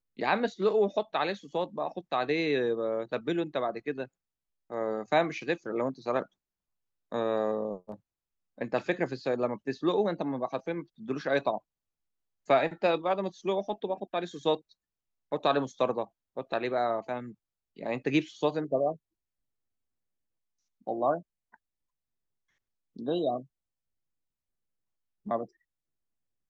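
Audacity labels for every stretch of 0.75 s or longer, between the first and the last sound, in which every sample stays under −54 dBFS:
6.260000	7.120000	silence
11.600000	12.470000	silence
18.970000	20.810000	silence
21.550000	22.960000	silence
23.460000	25.260000	silence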